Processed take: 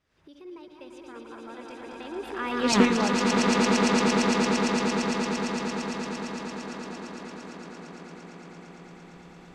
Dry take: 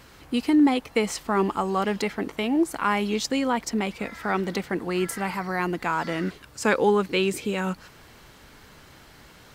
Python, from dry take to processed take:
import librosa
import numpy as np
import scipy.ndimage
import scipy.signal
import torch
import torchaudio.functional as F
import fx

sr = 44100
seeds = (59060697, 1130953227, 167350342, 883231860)

y = fx.reverse_delay_fb(x, sr, ms=135, feedback_pct=67, wet_db=-6.5)
y = fx.recorder_agc(y, sr, target_db=-17.0, rise_db_per_s=39.0, max_gain_db=30)
y = fx.doppler_pass(y, sr, speed_mps=55, closest_m=3.0, pass_at_s=2.77)
y = fx.air_absorb(y, sr, metres=59.0)
y = fx.echo_swell(y, sr, ms=114, loudest=8, wet_db=-6)
y = fx.doppler_dist(y, sr, depth_ms=0.19)
y = F.gain(torch.from_numpy(y), 8.0).numpy()